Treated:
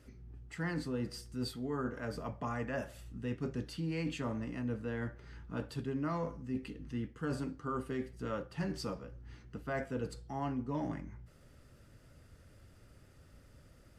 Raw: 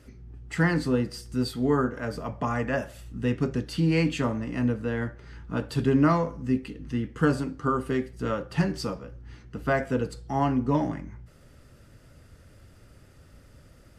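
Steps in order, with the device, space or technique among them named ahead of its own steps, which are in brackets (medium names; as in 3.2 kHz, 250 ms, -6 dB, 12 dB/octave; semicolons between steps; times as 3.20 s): compression on the reversed sound (reverse; compression 5:1, threshold -27 dBFS, peak gain reduction 10 dB; reverse); trim -6.5 dB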